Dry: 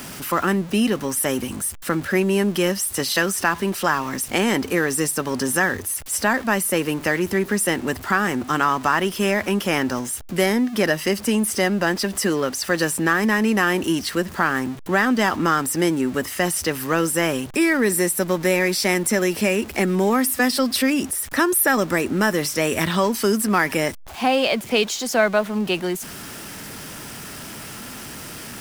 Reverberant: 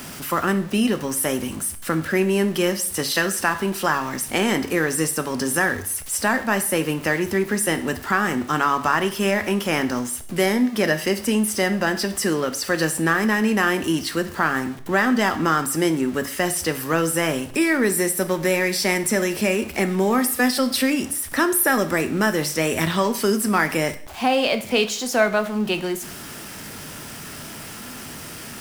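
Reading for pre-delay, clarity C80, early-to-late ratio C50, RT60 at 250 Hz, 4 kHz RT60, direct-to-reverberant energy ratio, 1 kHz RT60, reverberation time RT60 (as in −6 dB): 7 ms, 17.5 dB, 13.5 dB, 0.55 s, 0.50 s, 9.5 dB, 0.55 s, 0.55 s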